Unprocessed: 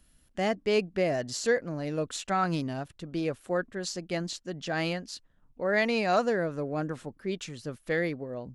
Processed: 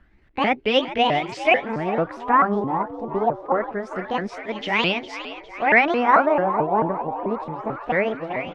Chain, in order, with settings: repeated pitch sweeps +7.5 st, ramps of 0.22 s; frequency-shifting echo 0.407 s, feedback 63%, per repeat +83 Hz, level -13 dB; LFO low-pass sine 0.25 Hz 910–2800 Hz; gain +7.5 dB

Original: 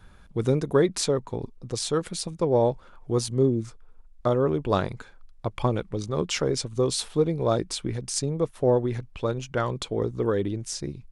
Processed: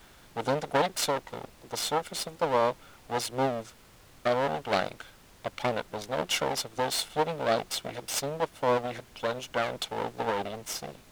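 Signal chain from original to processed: minimum comb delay 1.4 ms; HPF 310 Hz 12 dB/oct; bell 3200 Hz +5 dB 0.59 oct; added noise pink -55 dBFS; Doppler distortion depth 0.23 ms

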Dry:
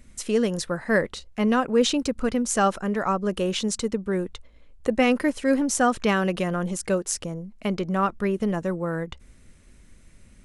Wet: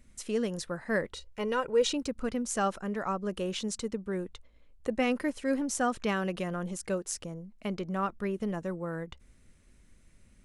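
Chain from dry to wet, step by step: 1.12–1.93 comb 2.1 ms, depth 64%; gain -8 dB

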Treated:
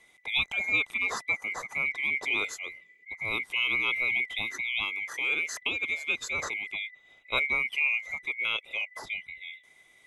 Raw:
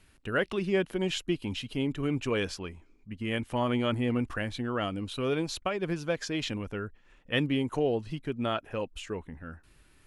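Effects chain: band-swap scrambler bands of 2000 Hz

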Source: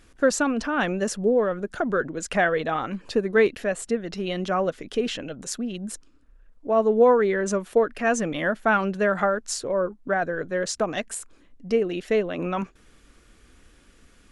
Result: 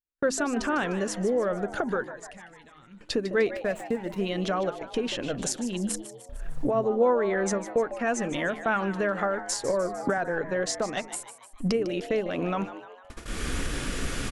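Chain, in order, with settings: 3.55–4.25 median filter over 9 samples; recorder AGC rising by 32 dB/s; gate -30 dBFS, range -44 dB; 2.04–3.01 passive tone stack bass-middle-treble 6-0-2; de-hum 53.1 Hz, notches 7; frequency-shifting echo 0.151 s, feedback 52%, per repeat +120 Hz, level -13 dB; 9.68–10.18 three-band squash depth 100%; gain -5.5 dB

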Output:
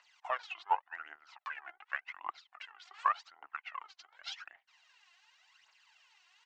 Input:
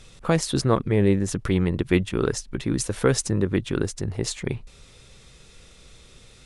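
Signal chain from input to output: treble ducked by the level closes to 3000 Hz, closed at -20.5 dBFS; elliptic high-pass 990 Hz, stop band 80 dB; phaser 0.88 Hz, delay 2.3 ms, feedback 68%; pitch shift -4.5 st; air absorption 95 m; upward expander 1.5:1, over -43 dBFS; gain -1.5 dB

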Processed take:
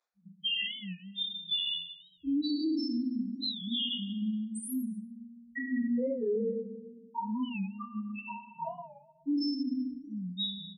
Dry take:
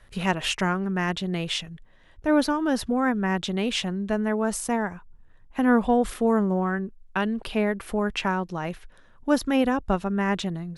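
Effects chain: recorder AGC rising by 34 dB/s; loudest bins only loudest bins 1; doubler 24 ms -13 dB; spectral noise reduction 27 dB; HPF 960 Hz 12 dB/oct; 8.1–8.55 compressor 6:1, threshold -53 dBFS, peak gain reduction 16.5 dB; dynamic EQ 1500 Hz, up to -4 dB, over -57 dBFS, Q 0.73; reverb RT60 1.1 s, pre-delay 3 ms, DRR -13.5 dB; limiter -24.5 dBFS, peak gain reduction 9 dB; record warp 45 rpm, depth 160 cents

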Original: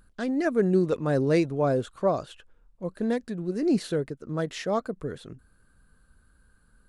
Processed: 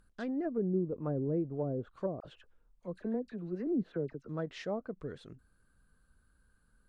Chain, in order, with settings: treble ducked by the level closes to 410 Hz, closed at -20 dBFS; 2.2–4.28 dispersion lows, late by 43 ms, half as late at 1300 Hz; gain -8 dB

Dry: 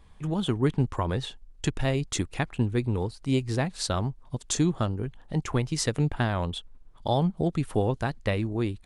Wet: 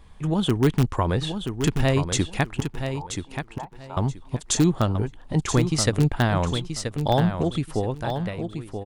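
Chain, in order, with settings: ending faded out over 1.93 s; in parallel at -9.5 dB: wrapped overs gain 14.5 dB; 2.6–3.97 on the sum: band-pass 900 Hz, Q 7.8; feedback echo 0.979 s, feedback 20%, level -7.5 dB; gain +2.5 dB

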